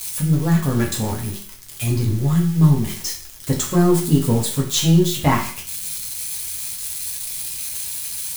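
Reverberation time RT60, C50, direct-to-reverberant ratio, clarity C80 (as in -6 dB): 0.50 s, 7.5 dB, -2.0 dB, 11.0 dB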